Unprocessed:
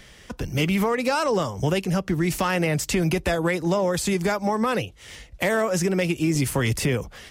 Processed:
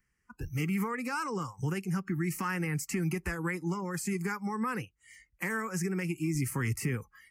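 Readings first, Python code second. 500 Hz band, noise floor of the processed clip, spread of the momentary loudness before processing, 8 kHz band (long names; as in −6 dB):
−15.5 dB, −77 dBFS, 6 LU, −9.0 dB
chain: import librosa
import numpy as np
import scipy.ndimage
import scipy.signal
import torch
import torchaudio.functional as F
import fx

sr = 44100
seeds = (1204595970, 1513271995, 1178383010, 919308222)

y = fx.fixed_phaser(x, sr, hz=1500.0, stages=4)
y = fx.noise_reduce_blind(y, sr, reduce_db=21)
y = y * librosa.db_to_amplitude(-6.5)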